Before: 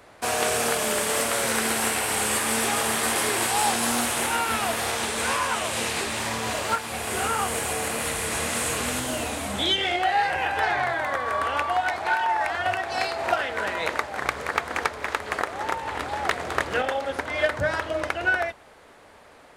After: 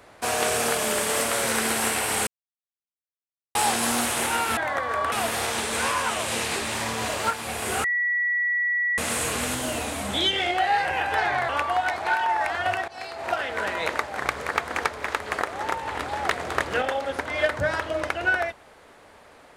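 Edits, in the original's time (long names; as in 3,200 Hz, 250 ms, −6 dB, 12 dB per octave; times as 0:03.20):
0:02.27–0:03.55: silence
0:07.29–0:08.43: beep over 1,940 Hz −21 dBFS
0:10.94–0:11.49: move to 0:04.57
0:12.88–0:13.55: fade in, from −17.5 dB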